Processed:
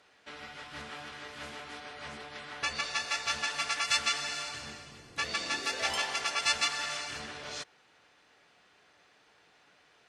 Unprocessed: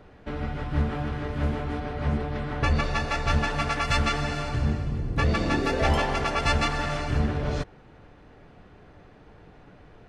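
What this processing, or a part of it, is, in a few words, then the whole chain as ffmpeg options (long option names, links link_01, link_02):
piezo pickup straight into a mixer: -af "lowpass=8300,aderivative,volume=8dB"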